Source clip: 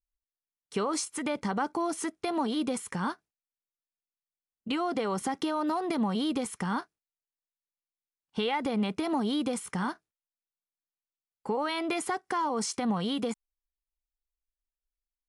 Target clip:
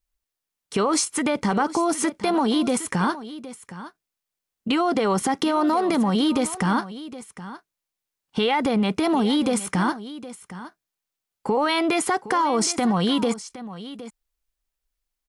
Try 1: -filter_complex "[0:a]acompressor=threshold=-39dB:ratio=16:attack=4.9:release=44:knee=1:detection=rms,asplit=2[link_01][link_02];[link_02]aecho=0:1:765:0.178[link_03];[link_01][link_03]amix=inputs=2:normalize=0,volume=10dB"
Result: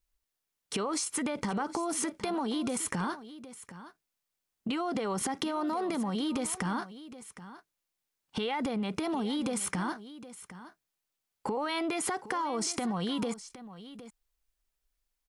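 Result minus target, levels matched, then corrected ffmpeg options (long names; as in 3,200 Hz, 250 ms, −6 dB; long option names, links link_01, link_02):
downward compressor: peak gain reduction +11 dB
-filter_complex "[0:a]acompressor=threshold=-27dB:ratio=16:attack=4.9:release=44:knee=1:detection=rms,asplit=2[link_01][link_02];[link_02]aecho=0:1:765:0.178[link_03];[link_01][link_03]amix=inputs=2:normalize=0,volume=10dB"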